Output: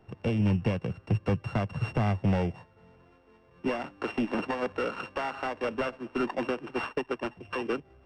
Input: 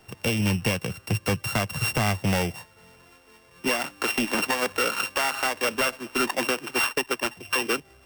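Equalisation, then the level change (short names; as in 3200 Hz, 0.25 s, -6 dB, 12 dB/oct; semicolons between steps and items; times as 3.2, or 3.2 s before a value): tape spacing loss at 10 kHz 33 dB; bell 2400 Hz -4 dB 2.9 oct; 0.0 dB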